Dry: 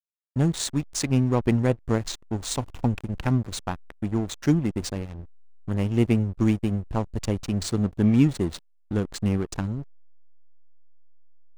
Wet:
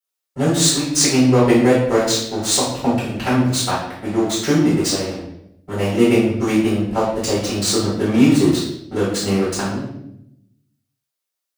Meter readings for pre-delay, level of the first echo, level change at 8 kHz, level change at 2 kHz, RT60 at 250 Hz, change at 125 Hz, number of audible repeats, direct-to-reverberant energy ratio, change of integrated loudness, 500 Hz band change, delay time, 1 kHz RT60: 4 ms, no echo, +14.5 dB, +12.0 dB, 1.1 s, +2.0 dB, no echo, -9.5 dB, +8.0 dB, +12.0 dB, no echo, 0.65 s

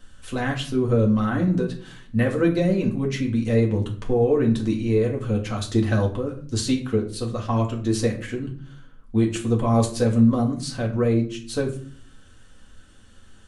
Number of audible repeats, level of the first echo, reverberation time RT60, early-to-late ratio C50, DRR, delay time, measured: no echo, no echo, 0.50 s, 10.5 dB, -0.5 dB, no echo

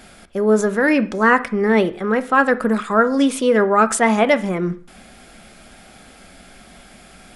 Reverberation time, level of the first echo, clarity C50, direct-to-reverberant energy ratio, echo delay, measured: 0.45 s, no echo, 17.0 dB, 10.0 dB, no echo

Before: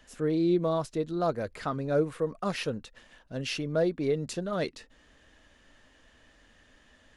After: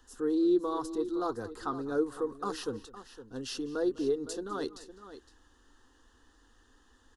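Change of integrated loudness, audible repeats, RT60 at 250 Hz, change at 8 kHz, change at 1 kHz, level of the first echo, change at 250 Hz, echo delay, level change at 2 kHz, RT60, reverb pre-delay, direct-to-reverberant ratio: -2.5 dB, 2, no reverb, -1.0 dB, -2.0 dB, -20.0 dB, -1.0 dB, 202 ms, -7.0 dB, no reverb, no reverb, no reverb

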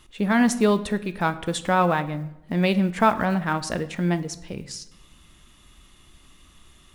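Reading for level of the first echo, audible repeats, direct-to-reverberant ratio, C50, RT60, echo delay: no echo, no echo, 11.0 dB, 15.0 dB, 0.90 s, no echo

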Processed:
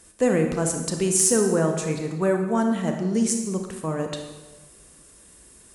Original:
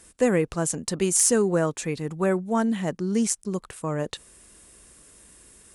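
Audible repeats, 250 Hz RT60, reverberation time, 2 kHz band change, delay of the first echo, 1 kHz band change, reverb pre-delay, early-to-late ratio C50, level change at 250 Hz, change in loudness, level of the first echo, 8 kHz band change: no echo, 1.4 s, 1.2 s, 0.0 dB, no echo, +1.0 dB, 28 ms, 5.5 dB, +2.0 dB, +1.5 dB, no echo, +1.0 dB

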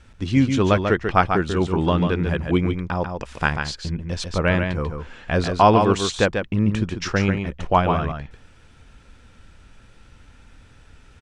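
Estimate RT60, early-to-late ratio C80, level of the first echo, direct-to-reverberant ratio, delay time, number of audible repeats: no reverb, no reverb, -6.0 dB, no reverb, 142 ms, 1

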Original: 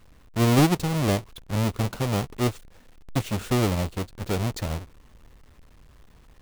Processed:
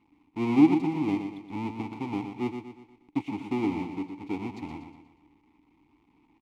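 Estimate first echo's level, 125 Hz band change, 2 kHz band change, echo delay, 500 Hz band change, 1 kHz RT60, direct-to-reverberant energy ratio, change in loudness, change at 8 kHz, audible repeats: -7.5 dB, -14.5 dB, -7.5 dB, 120 ms, -7.0 dB, no reverb, no reverb, -3.5 dB, under -20 dB, 4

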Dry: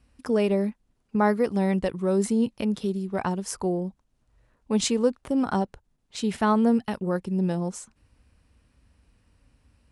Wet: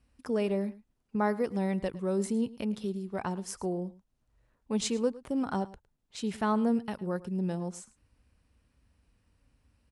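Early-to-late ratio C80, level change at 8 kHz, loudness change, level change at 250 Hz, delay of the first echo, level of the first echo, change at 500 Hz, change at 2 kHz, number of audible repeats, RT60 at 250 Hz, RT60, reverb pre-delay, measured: no reverb, -6.5 dB, -6.5 dB, -6.5 dB, 108 ms, -19.0 dB, -6.5 dB, -6.5 dB, 1, no reverb, no reverb, no reverb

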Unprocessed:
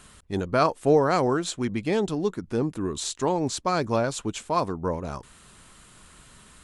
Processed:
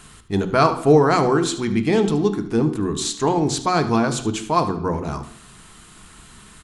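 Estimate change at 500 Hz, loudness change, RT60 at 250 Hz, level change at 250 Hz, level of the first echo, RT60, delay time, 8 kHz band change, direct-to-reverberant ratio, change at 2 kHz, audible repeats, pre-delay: +5.0 dB, +6.0 dB, 0.65 s, +7.5 dB, -14.0 dB, 0.70 s, 75 ms, +5.5 dB, 8.0 dB, +6.0 dB, 1, 3 ms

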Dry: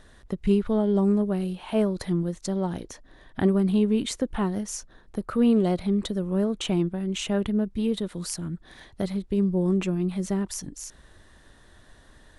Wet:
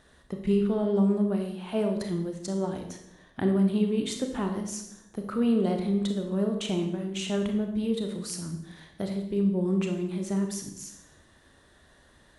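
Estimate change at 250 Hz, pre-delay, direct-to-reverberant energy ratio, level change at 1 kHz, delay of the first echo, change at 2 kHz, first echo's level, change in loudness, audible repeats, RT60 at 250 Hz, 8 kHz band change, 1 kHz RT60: -2.5 dB, 27 ms, 4.0 dB, -2.5 dB, no echo, -2.5 dB, no echo, -2.5 dB, no echo, 1.0 s, -2.5 dB, 0.70 s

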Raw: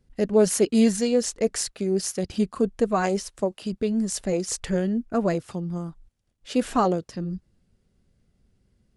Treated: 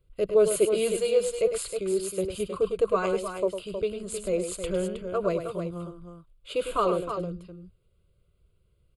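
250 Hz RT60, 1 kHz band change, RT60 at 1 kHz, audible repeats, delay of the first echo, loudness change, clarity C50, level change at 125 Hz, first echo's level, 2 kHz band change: no reverb, -3.0 dB, no reverb, 2, 103 ms, -2.5 dB, no reverb, -7.5 dB, -8.5 dB, -3.5 dB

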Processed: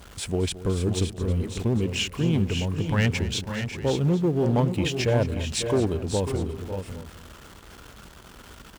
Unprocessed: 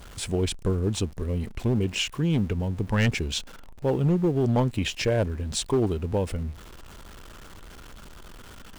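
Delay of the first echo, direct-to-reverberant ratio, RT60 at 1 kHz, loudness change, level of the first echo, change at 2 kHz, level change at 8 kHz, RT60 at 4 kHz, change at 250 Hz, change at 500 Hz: 220 ms, no reverb, no reverb, +1.0 dB, -16.0 dB, +1.0 dB, +1.0 dB, no reverb, +1.0 dB, +1.0 dB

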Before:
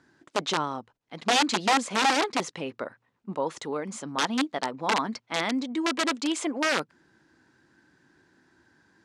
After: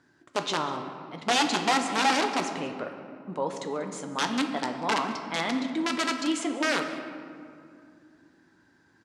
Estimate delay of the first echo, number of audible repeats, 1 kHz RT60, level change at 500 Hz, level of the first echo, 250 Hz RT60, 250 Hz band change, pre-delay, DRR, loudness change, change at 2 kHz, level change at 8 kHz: 190 ms, 1, 2.3 s, -0.5 dB, -18.5 dB, 3.6 s, 0.0 dB, 7 ms, 4.5 dB, -1.0 dB, -0.5 dB, -1.5 dB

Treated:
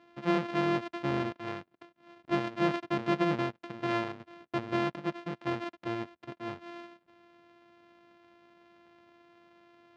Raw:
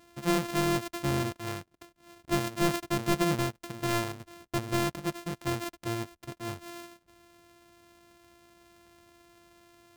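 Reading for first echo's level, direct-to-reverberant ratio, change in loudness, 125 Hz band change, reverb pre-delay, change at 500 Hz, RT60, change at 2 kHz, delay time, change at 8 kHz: no echo, no reverb, -1.5 dB, -5.0 dB, no reverb, -0.5 dB, no reverb, -1.5 dB, no echo, under -15 dB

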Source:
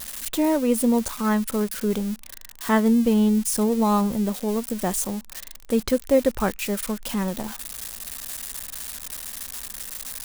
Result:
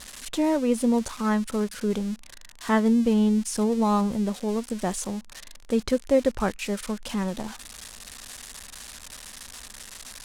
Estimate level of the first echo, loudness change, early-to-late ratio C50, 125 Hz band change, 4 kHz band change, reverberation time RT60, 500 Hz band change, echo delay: no echo, -1.0 dB, no reverb, -2.0 dB, -2.0 dB, no reverb, -2.0 dB, no echo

